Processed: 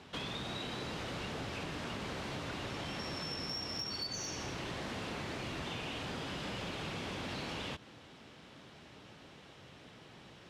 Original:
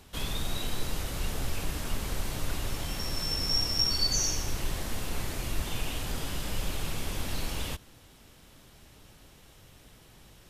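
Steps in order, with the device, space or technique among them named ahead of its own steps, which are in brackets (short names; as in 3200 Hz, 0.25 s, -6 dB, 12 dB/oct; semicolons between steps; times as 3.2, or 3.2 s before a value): AM radio (BPF 140–3900 Hz; compressor 6:1, threshold -40 dBFS, peak gain reduction 11.5 dB; soft clip -32.5 dBFS, distortion -26 dB); gain +3.5 dB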